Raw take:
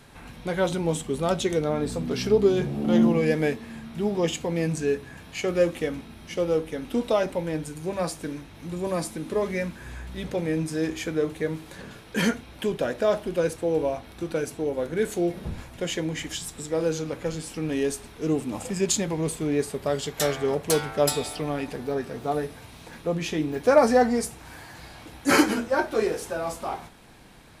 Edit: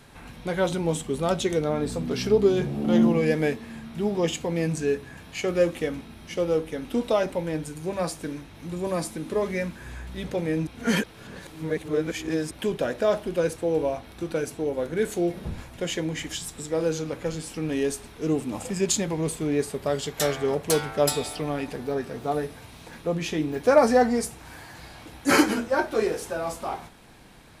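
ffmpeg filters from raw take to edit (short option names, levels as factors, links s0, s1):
-filter_complex "[0:a]asplit=3[s0][s1][s2];[s0]atrim=end=10.672[s3];[s1]atrim=start=10.668:end=12.512,asetpts=PTS-STARTPTS,areverse[s4];[s2]atrim=start=12.508[s5];[s3][s4]acrossfade=d=0.004:c1=hsin:c2=hsin[s6];[s6][s5]acrossfade=d=0.004:c1=hsin:c2=hsin"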